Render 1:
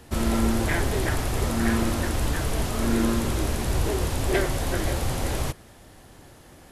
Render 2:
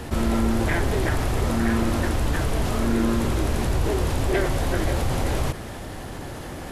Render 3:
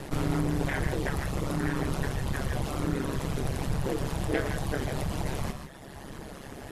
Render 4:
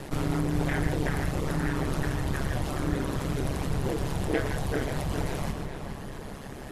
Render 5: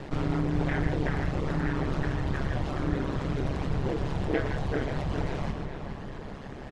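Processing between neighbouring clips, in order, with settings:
treble shelf 3.8 kHz -6.5 dB; level flattener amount 50%
reverb removal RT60 1.5 s; gated-style reverb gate 180 ms rising, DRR 6.5 dB; ring modulator 69 Hz; trim -2 dB
filtered feedback delay 419 ms, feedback 47%, low-pass 3.3 kHz, level -6 dB
distance through air 130 m; resampled via 32 kHz

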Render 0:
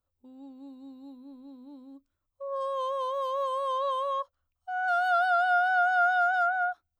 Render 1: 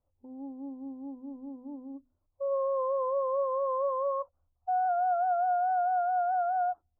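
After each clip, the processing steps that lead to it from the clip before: compression, threshold -29 dBFS, peak gain reduction 9 dB; Chebyshev low-pass 850 Hz, order 3; hum notches 50/100/150/200/250 Hz; trim +6.5 dB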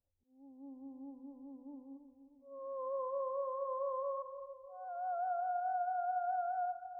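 slow attack 531 ms; level-controlled noise filter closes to 770 Hz, open at -26 dBFS; two-band feedback delay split 1 kHz, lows 311 ms, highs 125 ms, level -10.5 dB; trim -9 dB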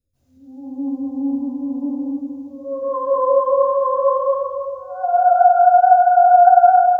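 reverberation RT60 1.1 s, pre-delay 130 ms, DRR -20 dB; trim +4 dB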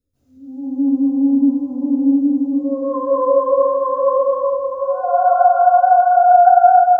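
small resonant body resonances 280/420/1300 Hz, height 9 dB; on a send: repeats whose band climbs or falls 416 ms, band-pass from 330 Hz, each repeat 0.7 oct, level -3 dB; on the sum: trim -1 dB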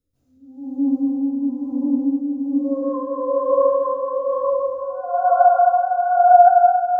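tremolo 1.1 Hz, depth 57%; simulated room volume 1000 m³, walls mixed, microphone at 0.65 m; trim -1 dB

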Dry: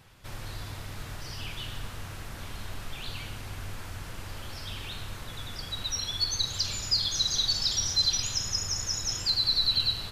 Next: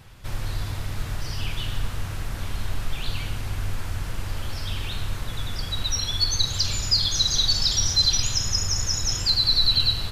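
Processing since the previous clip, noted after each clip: bass shelf 110 Hz +8.5 dB; trim +5 dB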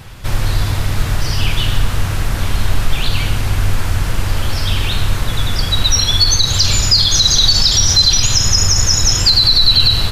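loudness maximiser +14 dB; trim -1 dB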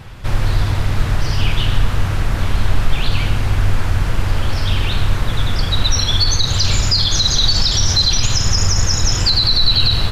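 treble shelf 4.4 kHz -8.5 dB; loudspeaker Doppler distortion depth 0.17 ms

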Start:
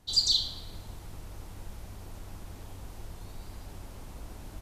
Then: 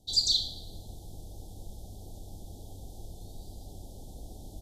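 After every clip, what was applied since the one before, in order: Chebyshev band-stop 800–3400 Hz, order 4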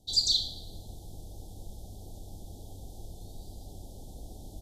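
no audible change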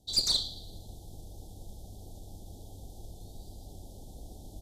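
valve stage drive 17 dB, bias 0.6; trim +1.5 dB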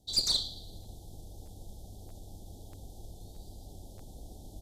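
crackling interface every 0.63 s, samples 512, repeat, from 0.82 s; trim -1 dB

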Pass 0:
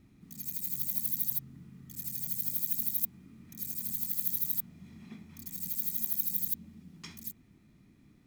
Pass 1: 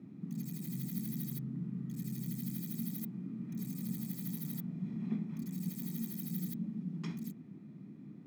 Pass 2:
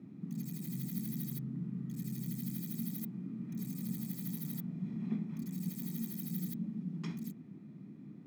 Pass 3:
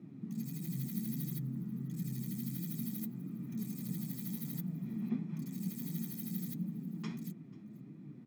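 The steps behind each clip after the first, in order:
steep high-pass 150 Hz 36 dB/octave; tilt EQ -4.5 dB/octave; trim +2.5 dB
no audible change
flange 1.5 Hz, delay 5.6 ms, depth 4.4 ms, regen +39%; delay 489 ms -23 dB; trim +4 dB

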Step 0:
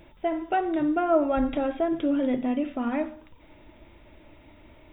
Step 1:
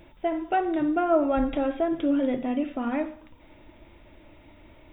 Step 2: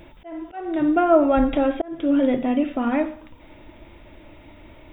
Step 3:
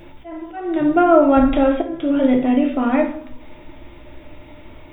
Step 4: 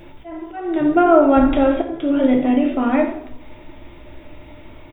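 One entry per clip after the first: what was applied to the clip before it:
reverberation, pre-delay 3 ms, DRR 15 dB
slow attack 365 ms; trim +6 dB
simulated room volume 57 m³, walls mixed, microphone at 0.41 m; trim +2.5 dB
frequency-shifting echo 85 ms, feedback 35%, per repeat +49 Hz, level -16 dB

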